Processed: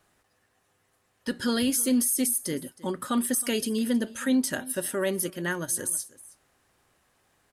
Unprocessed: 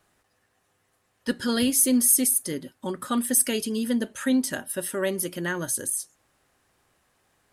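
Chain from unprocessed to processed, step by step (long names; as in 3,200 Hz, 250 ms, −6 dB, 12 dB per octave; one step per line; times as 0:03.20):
brickwall limiter −16.5 dBFS, peak gain reduction 9.5 dB
single-tap delay 317 ms −20.5 dB
0:05.30–0:05.76: expander for the loud parts 1.5 to 1, over −39 dBFS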